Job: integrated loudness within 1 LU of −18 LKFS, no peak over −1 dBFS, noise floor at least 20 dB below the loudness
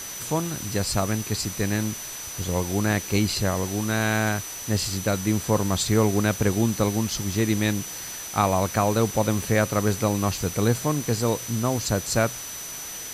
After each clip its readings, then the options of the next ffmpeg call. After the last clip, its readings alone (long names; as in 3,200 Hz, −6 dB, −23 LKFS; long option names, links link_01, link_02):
interfering tone 6,000 Hz; level of the tone −36 dBFS; background noise floor −36 dBFS; target noise floor −45 dBFS; integrated loudness −24.5 LKFS; sample peak −7.0 dBFS; target loudness −18.0 LKFS
→ -af "bandreject=frequency=6000:width=30"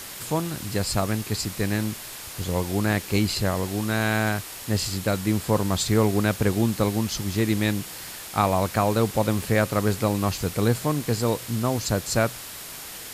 interfering tone none found; background noise floor −38 dBFS; target noise floor −45 dBFS
→ -af "afftdn=noise_reduction=7:noise_floor=-38"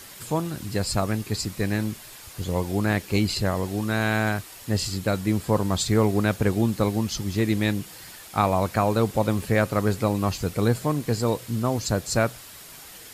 background noise floor −44 dBFS; target noise floor −45 dBFS
→ -af "afftdn=noise_reduction=6:noise_floor=-44"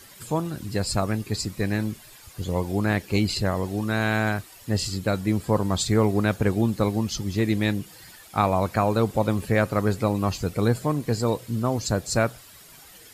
background noise floor −48 dBFS; integrated loudness −25.0 LKFS; sample peak −7.0 dBFS; target loudness −18.0 LKFS
→ -af "volume=7dB,alimiter=limit=-1dB:level=0:latency=1"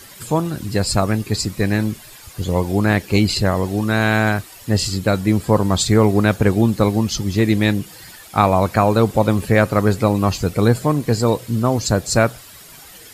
integrated loudness −18.0 LKFS; sample peak −1.0 dBFS; background noise floor −41 dBFS